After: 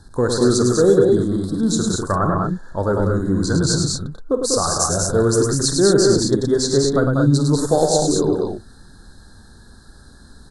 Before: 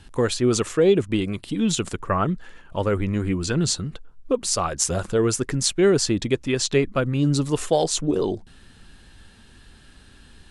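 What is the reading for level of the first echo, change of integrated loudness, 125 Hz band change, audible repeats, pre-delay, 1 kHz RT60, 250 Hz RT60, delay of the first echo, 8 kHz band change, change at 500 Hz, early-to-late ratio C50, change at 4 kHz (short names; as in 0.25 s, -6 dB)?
-12.0 dB, +5.0 dB, +5.5 dB, 4, none, none, none, 49 ms, +4.5 dB, +5.5 dB, none, +3.5 dB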